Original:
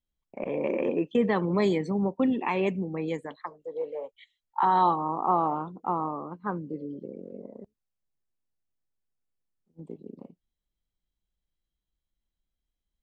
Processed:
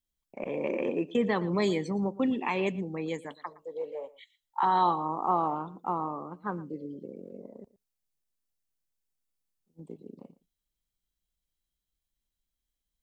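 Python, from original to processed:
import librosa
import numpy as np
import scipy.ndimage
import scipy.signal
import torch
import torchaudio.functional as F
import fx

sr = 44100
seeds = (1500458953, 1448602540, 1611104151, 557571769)

p1 = fx.high_shelf(x, sr, hz=3500.0, db=9.5)
p2 = p1 + fx.echo_single(p1, sr, ms=116, db=-19.5, dry=0)
y = p2 * 10.0 ** (-3.0 / 20.0)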